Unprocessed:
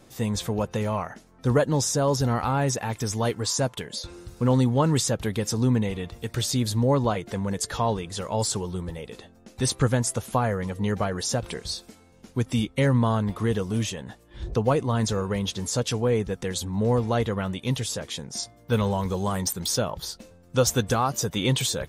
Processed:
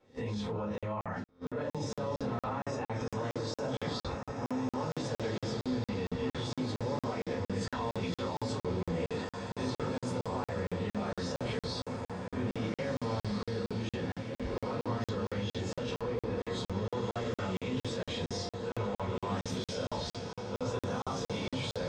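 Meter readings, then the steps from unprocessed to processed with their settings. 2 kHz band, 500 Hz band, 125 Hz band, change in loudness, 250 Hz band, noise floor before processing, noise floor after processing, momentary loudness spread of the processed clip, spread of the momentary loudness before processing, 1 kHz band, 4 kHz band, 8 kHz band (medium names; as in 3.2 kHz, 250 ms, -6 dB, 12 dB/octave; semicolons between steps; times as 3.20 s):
-8.0 dB, -8.5 dB, -12.0 dB, -10.5 dB, -9.0 dB, -54 dBFS, under -85 dBFS, 3 LU, 11 LU, -9.0 dB, -10.5 dB, -20.0 dB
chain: reverse spectral sustain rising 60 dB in 0.37 s; high-pass 240 Hz 6 dB/octave; distance through air 120 m; simulated room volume 120 m³, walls furnished, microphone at 4.5 m; reverse; compression 8:1, threshold -22 dBFS, peak gain reduction 16.5 dB; reverse; gate -34 dBFS, range -16 dB; peak limiter -22 dBFS, peak gain reduction 9 dB; treble shelf 7.4 kHz -11 dB; on a send: echo that smears into a reverb 1703 ms, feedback 51%, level -4 dB; on the sum: crackling interface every 0.23 s, samples 2048, zero, from 0.78 s; trim -6 dB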